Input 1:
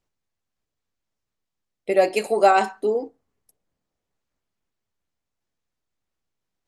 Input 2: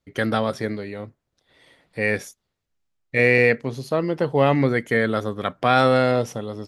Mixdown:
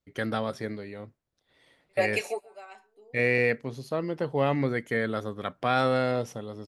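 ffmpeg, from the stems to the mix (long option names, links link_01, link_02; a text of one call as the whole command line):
ffmpeg -i stem1.wav -i stem2.wav -filter_complex "[0:a]highpass=frequency=610:poles=1,flanger=delay=6.8:depth=9.1:regen=-57:speed=0.42:shape=sinusoidal,equalizer=frequency=2300:width_type=o:width=0.77:gain=6,volume=-2dB,asplit=2[link_01][link_02];[link_02]volume=-22dB[link_03];[1:a]volume=-7.5dB,asplit=2[link_04][link_05];[link_05]apad=whole_len=294229[link_06];[link_01][link_06]sidechaingate=range=-39dB:threshold=-53dB:ratio=16:detection=peak[link_07];[link_03]aecho=0:1:137:1[link_08];[link_07][link_04][link_08]amix=inputs=3:normalize=0" out.wav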